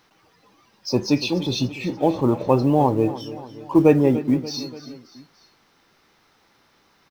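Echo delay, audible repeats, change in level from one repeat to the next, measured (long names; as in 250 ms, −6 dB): 290 ms, 3, −5.0 dB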